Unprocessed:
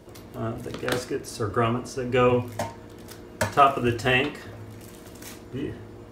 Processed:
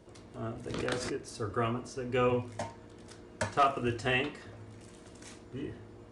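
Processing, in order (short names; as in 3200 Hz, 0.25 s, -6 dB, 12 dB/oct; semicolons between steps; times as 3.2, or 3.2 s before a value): hard clip -9.5 dBFS, distortion -22 dB; downsampling 22050 Hz; 0.66–1.16 backwards sustainer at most 29 dB/s; gain -8 dB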